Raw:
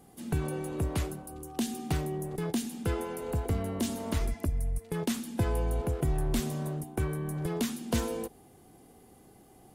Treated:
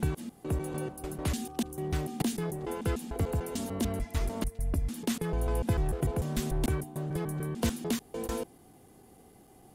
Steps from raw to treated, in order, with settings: slices played last to first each 148 ms, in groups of 3

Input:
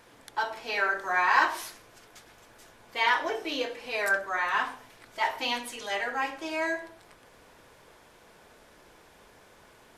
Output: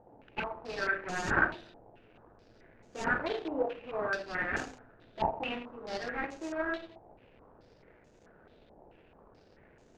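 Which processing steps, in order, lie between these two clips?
median filter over 41 samples; step-sequenced low-pass 4.6 Hz 820–6700 Hz

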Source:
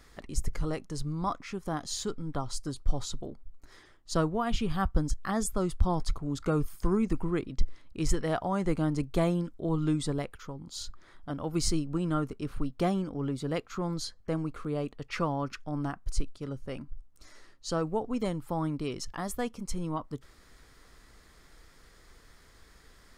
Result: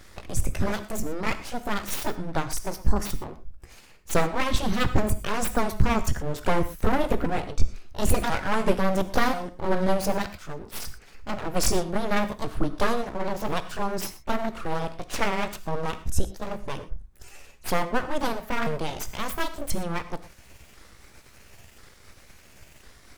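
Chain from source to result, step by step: sawtooth pitch modulation +7 st, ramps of 1037 ms; full-wave rectifier; gated-style reverb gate 140 ms flat, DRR 11 dB; trim +8.5 dB

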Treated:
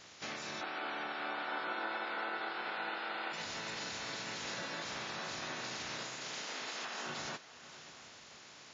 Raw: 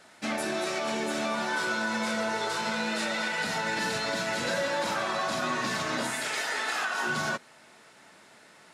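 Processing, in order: spectral peaks clipped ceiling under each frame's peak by 17 dB; compression 2:1, threshold -50 dBFS, peak gain reduction 13 dB; 0.61–3.33 s: cabinet simulation 290–3600 Hz, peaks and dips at 310 Hz +7 dB, 780 Hz +9 dB, 1.4 kHz +9 dB; echo that smears into a reverb 617 ms, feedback 45%, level -15 dB; WMA 32 kbps 16 kHz

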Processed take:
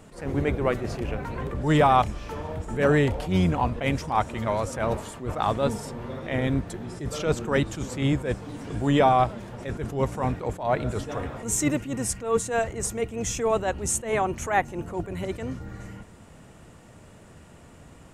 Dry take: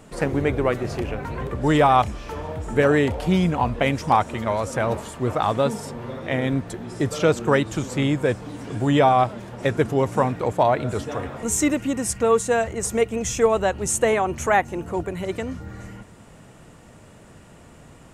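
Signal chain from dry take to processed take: octave divider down 1 oct, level -5 dB; attacks held to a fixed rise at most 130 dB/s; trim -2.5 dB

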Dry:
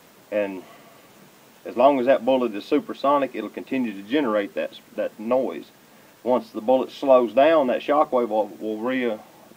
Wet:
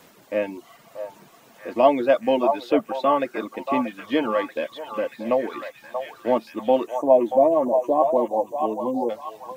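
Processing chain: spectral selection erased 6.87–9.10 s, 1.1–5.7 kHz; reverb removal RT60 0.66 s; repeats whose band climbs or falls 633 ms, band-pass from 860 Hz, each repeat 0.7 oct, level -3.5 dB

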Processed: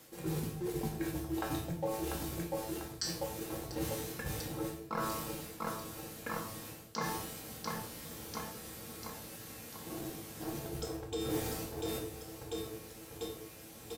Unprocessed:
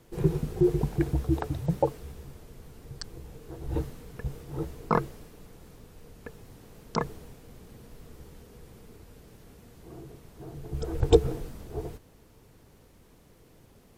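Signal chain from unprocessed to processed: tilt EQ +2.5 dB/octave; feedback comb 110 Hz, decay 0.39 s, harmonics all, mix 80%; feedback delay 694 ms, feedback 57%, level -14 dB; reverse; compression 12:1, threshold -49 dBFS, peak gain reduction 24 dB; reverse; high-pass 60 Hz; in parallel at -10 dB: small samples zeroed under -52.5 dBFS; on the sum: simulated room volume 610 m³, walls furnished, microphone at 2.2 m; trim +12 dB

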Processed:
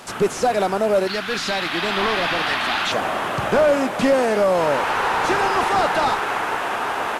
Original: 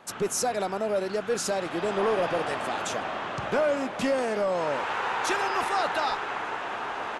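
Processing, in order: one-bit delta coder 64 kbps, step -44 dBFS; 1.07–2.92 s: graphic EQ 125/500/2000/4000/8000 Hz -6/-11/+4/+10/-6 dB; trim +9 dB

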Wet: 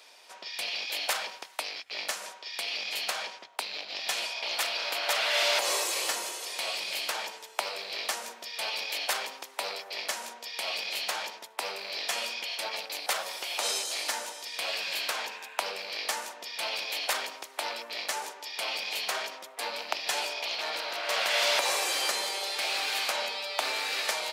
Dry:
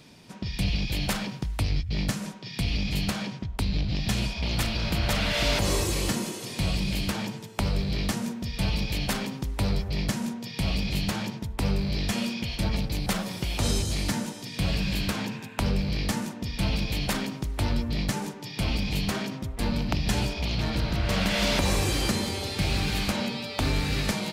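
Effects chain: rattle on loud lows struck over -24 dBFS, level -31 dBFS; high-pass 560 Hz 24 dB/octave; trim +1.5 dB

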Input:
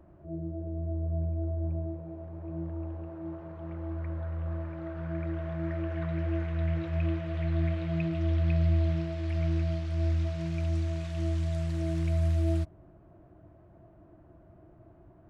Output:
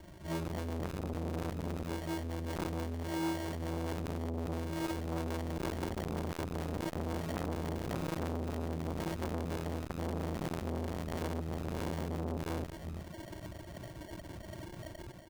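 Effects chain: rattle on loud lows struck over -31 dBFS, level -25 dBFS; Schroeder reverb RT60 0.87 s, combs from 33 ms, DRR 4 dB; peak limiter -20.5 dBFS, peak gain reduction 7 dB; level rider gain up to 7.5 dB; dynamic bell 130 Hz, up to -7 dB, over -35 dBFS, Q 0.97; compression 2.5:1, threshold -32 dBFS, peak gain reduction 8.5 dB; reverb removal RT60 0.71 s; speakerphone echo 230 ms, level -14 dB; sample-and-hold 35×; transformer saturation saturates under 830 Hz; trim +3.5 dB

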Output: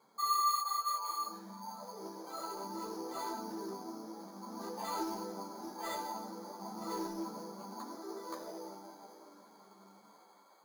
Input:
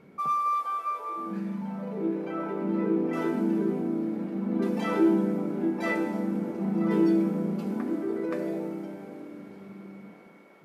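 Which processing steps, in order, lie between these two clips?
band-pass filter 960 Hz, Q 3.5; careless resampling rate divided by 8×, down filtered, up hold; in parallel at -5 dB: hard clipper -39.5 dBFS, distortion -6 dB; on the sum: three-phase chorus; trim +1 dB

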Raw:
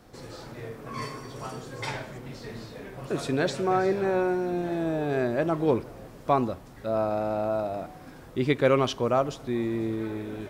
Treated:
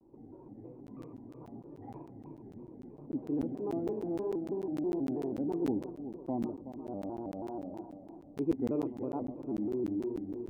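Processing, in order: cascade formant filter u; multi-head delay 123 ms, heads first and third, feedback 49%, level -11.5 dB; crackling interface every 0.15 s, samples 512, zero, from 0.87 s; vibrato with a chosen wave square 3.1 Hz, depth 160 cents

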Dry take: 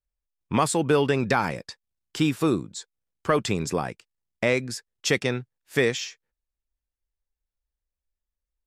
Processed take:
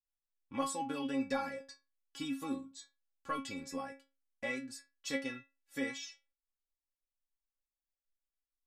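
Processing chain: inharmonic resonator 270 Hz, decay 0.28 s, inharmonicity 0.002

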